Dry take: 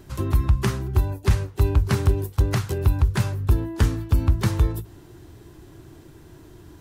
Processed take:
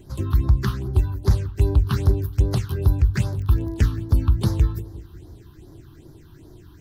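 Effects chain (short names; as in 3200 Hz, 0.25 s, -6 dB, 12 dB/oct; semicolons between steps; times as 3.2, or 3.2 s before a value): 3.3–3.96 crackle 37/s -29 dBFS; darkening echo 0.175 s, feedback 56%, low-pass 1100 Hz, level -16 dB; phaser stages 6, 2.5 Hz, lowest notch 540–2700 Hz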